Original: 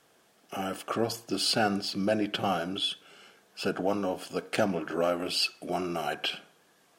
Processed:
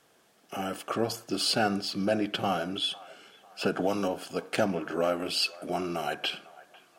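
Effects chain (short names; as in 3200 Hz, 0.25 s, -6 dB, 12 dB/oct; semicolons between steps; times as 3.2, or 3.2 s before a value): band-limited delay 0.501 s, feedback 43%, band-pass 1100 Hz, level -18.5 dB; 3.61–4.08 three-band squash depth 100%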